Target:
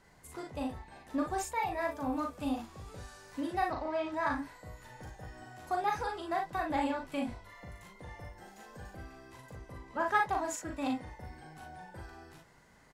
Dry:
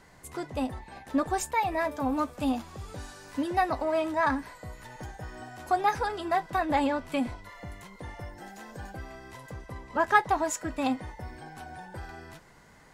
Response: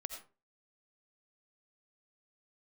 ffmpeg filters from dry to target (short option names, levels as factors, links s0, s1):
-filter_complex "[0:a]asettb=1/sr,asplit=3[s0][s1][s2];[s0]atrim=end=3.684[s3];[s1]atrim=start=3.68:end=4.12,asetpts=PTS-STARTPTS,afade=t=in:d=0.004:c=qsin,afade=t=out:st=0.436:d=0.004:c=qsin,lowpass=f=6100:w=0.5412,lowpass=f=6100:w=1.3066[s4];[s2]atrim=start=4.116[s5];[s3][s4]acrossfade=d=0.004:c1=hsin:c2=qsin[s6];[s6][s5]acrossfade=d=0.004:c1=qsin:c2=hsin,aecho=1:1:39|57:0.668|0.398,volume=0.398"